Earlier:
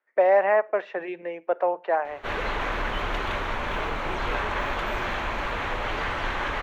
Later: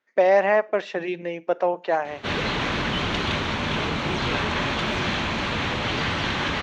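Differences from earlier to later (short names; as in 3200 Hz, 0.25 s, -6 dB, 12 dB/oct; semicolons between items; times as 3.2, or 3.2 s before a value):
background: add BPF 140–3900 Hz; master: remove three-band isolator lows -16 dB, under 380 Hz, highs -20 dB, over 2300 Hz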